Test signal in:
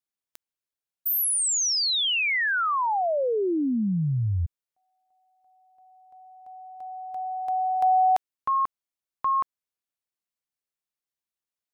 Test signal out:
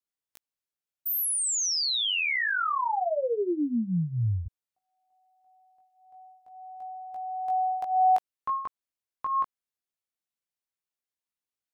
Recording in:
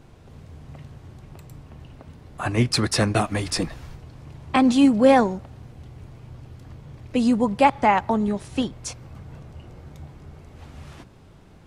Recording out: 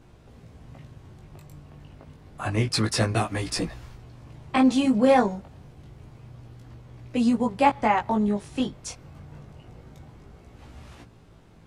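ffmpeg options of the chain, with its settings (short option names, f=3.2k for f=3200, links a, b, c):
-af "flanger=delay=17:depth=3.1:speed=0.28"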